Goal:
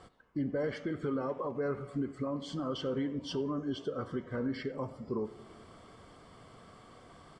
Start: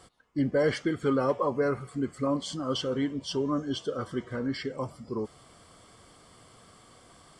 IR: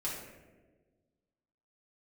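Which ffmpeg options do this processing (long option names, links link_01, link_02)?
-filter_complex "[0:a]aemphasis=mode=reproduction:type=75fm,alimiter=level_in=3dB:limit=-24dB:level=0:latency=1:release=320,volume=-3dB,asplit=2[link_01][link_02];[link_02]adelay=90,highpass=300,lowpass=3400,asoftclip=type=hard:threshold=-30dB,volume=-18dB[link_03];[link_01][link_03]amix=inputs=2:normalize=0,asplit=2[link_04][link_05];[1:a]atrim=start_sample=2205[link_06];[link_05][link_06]afir=irnorm=-1:irlink=0,volume=-15.5dB[link_07];[link_04][link_07]amix=inputs=2:normalize=0"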